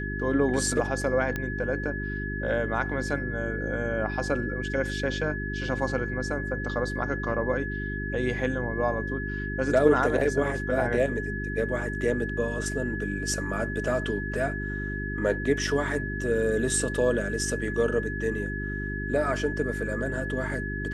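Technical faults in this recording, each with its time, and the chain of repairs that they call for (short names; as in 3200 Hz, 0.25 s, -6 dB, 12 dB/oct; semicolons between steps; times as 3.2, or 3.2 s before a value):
hum 50 Hz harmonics 8 -33 dBFS
tone 1700 Hz -34 dBFS
1.36 pop -16 dBFS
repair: de-click; notch 1700 Hz, Q 30; de-hum 50 Hz, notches 8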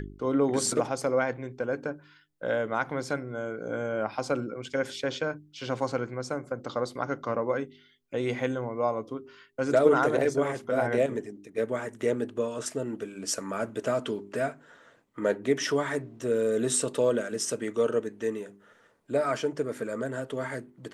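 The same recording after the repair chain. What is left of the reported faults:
none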